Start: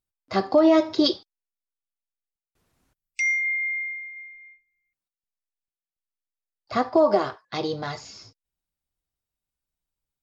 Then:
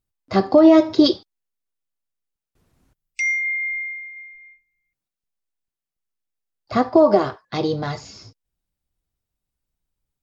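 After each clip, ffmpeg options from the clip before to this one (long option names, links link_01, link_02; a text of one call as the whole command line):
ffmpeg -i in.wav -af "lowshelf=frequency=450:gain=8,volume=1.5dB" out.wav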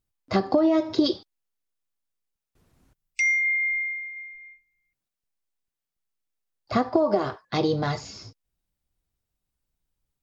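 ffmpeg -i in.wav -af "acompressor=threshold=-18dB:ratio=5" out.wav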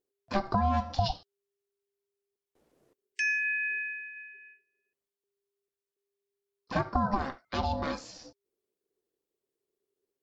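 ffmpeg -i in.wav -af "aeval=exprs='val(0)*sin(2*PI*400*n/s)':channel_layout=same,volume=-3.5dB" out.wav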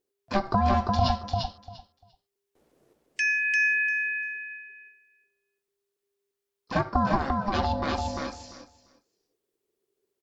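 ffmpeg -i in.wav -af "aecho=1:1:346|692|1038:0.668|0.107|0.0171,volume=3.5dB" out.wav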